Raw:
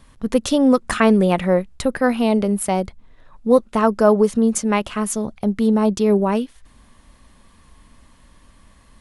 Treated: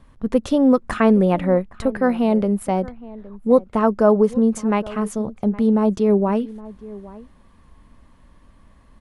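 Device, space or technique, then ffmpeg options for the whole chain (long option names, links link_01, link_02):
through cloth: -filter_complex "[0:a]highshelf=frequency=2400:gain=-12.5,asplit=2[link_01][link_02];[link_02]adelay=816.3,volume=-19dB,highshelf=frequency=4000:gain=-18.4[link_03];[link_01][link_03]amix=inputs=2:normalize=0"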